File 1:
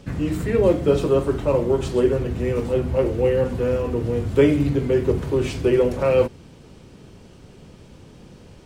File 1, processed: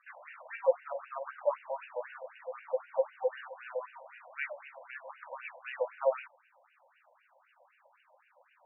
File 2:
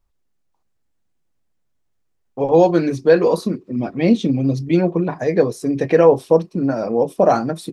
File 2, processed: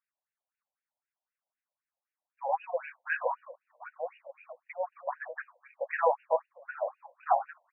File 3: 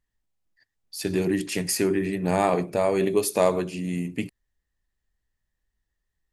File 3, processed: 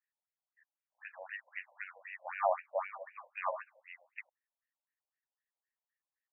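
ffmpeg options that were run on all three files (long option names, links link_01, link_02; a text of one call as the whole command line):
ffmpeg -i in.wav -af "afftfilt=real='re*between(b*sr/1024,700*pow(2100/700,0.5+0.5*sin(2*PI*3.9*pts/sr))/1.41,700*pow(2100/700,0.5+0.5*sin(2*PI*3.9*pts/sr))*1.41)':imag='im*between(b*sr/1024,700*pow(2100/700,0.5+0.5*sin(2*PI*3.9*pts/sr))/1.41,700*pow(2100/700,0.5+0.5*sin(2*PI*3.9*pts/sr))*1.41)':win_size=1024:overlap=0.75,volume=-4.5dB" out.wav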